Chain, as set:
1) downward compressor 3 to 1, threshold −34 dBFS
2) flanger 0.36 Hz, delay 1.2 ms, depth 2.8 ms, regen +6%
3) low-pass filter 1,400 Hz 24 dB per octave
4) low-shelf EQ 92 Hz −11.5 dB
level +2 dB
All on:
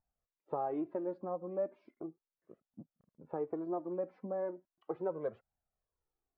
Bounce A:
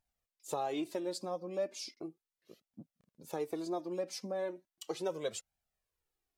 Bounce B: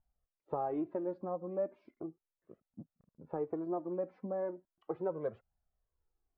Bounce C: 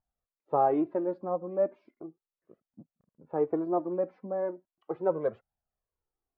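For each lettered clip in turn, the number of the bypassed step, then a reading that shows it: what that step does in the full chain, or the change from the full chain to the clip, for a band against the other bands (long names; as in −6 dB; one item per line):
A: 3, 2 kHz band +9.0 dB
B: 4, 125 Hz band +2.5 dB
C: 1, average gain reduction 5.5 dB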